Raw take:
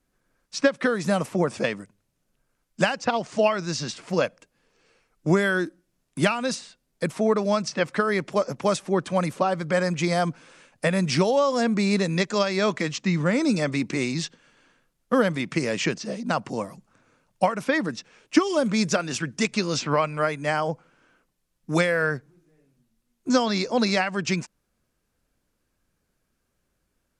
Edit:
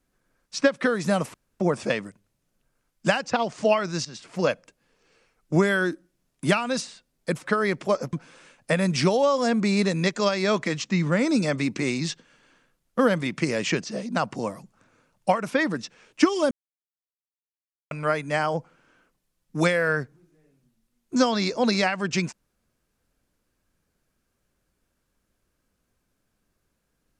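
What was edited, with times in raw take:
0:01.34: splice in room tone 0.26 s
0:03.79–0:04.19: fade in linear, from −15 dB
0:07.15–0:07.88: remove
0:08.60–0:10.27: remove
0:18.65–0:20.05: silence

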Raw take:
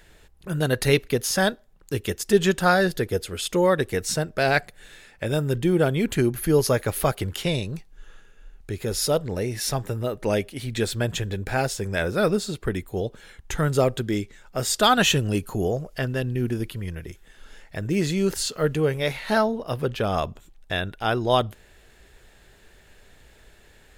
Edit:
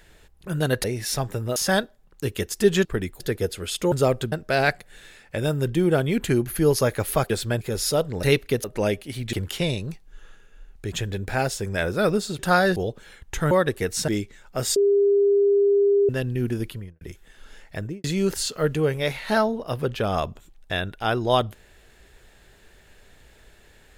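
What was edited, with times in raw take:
0:00.84–0:01.25: swap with 0:09.39–0:10.11
0:02.54–0:02.91: swap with 0:12.58–0:12.93
0:03.63–0:04.20: swap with 0:13.68–0:14.08
0:07.18–0:08.77: swap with 0:10.80–0:11.11
0:14.76–0:16.09: beep over 402 Hz −15 dBFS
0:16.68–0:17.01: fade out and dull
0:17.77–0:18.04: fade out and dull

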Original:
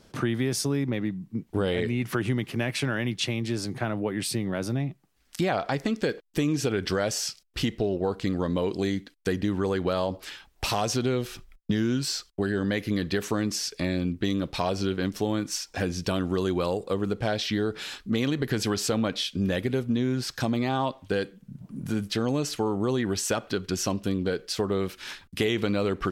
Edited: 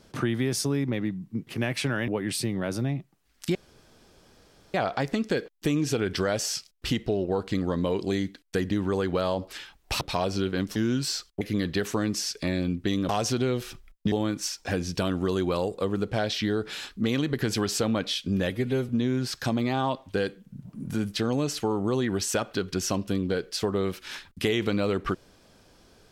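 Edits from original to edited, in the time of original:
0:01.47–0:02.45: remove
0:03.06–0:03.99: remove
0:05.46: splice in room tone 1.19 s
0:10.73–0:11.76: swap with 0:14.46–0:15.21
0:12.41–0:12.78: remove
0:19.59–0:19.85: time-stretch 1.5×

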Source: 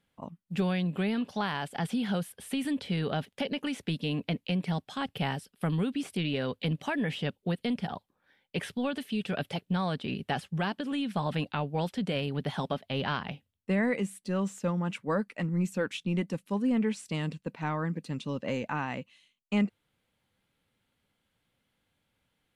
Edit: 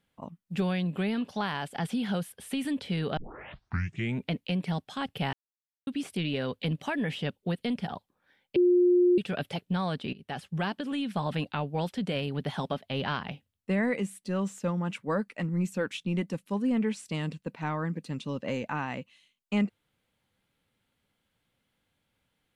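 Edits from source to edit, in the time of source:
0:03.17: tape start 1.14 s
0:05.33–0:05.87: silence
0:08.56–0:09.18: beep over 356 Hz −18 dBFS
0:10.13–0:10.56: fade in, from −18.5 dB

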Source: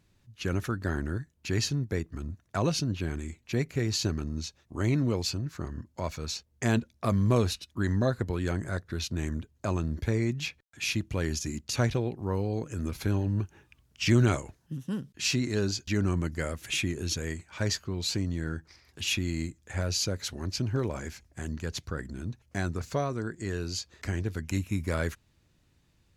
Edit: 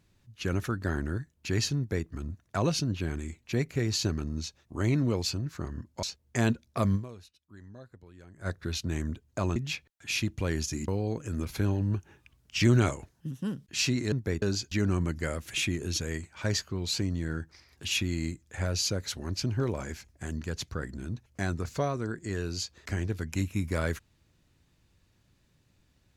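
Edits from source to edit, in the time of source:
0:01.77–0:02.07: duplicate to 0:15.58
0:06.03–0:06.30: remove
0:07.22–0:08.74: duck −22 dB, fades 0.38 s exponential
0:09.83–0:10.29: remove
0:11.61–0:12.34: remove

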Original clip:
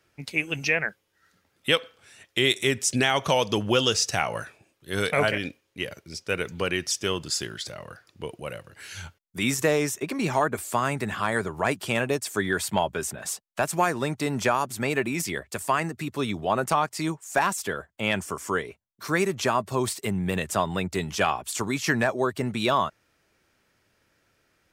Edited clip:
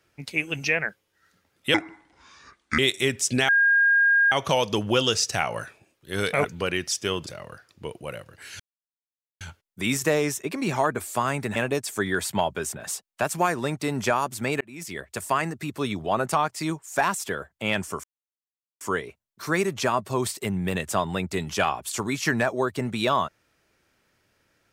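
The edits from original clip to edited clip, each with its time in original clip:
0:01.74–0:02.41: play speed 64%
0:03.11: insert tone 1,620 Hz −15.5 dBFS 0.83 s
0:05.24–0:06.44: remove
0:07.26–0:07.65: remove
0:08.98: splice in silence 0.81 s
0:11.13–0:11.94: remove
0:14.99–0:15.55: fade in linear
0:18.42: splice in silence 0.77 s

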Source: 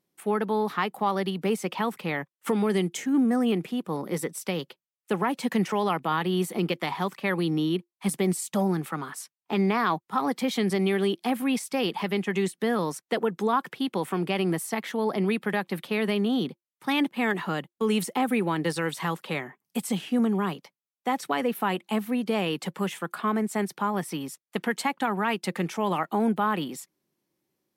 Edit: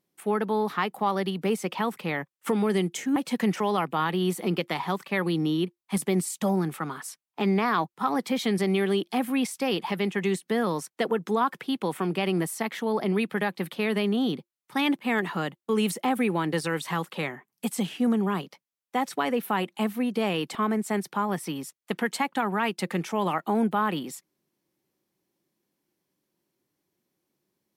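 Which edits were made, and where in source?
0:03.16–0:05.28: remove
0:22.67–0:23.20: remove

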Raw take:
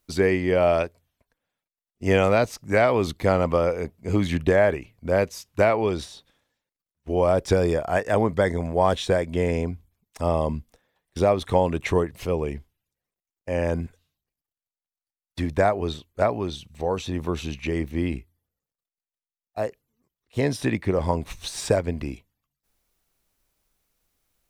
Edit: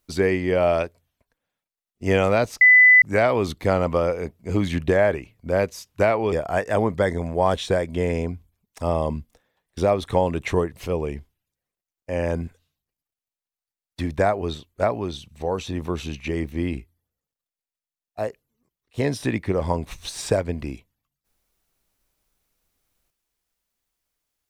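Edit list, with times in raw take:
0:02.61: insert tone 2,000 Hz −8.5 dBFS 0.41 s
0:05.91–0:07.71: remove

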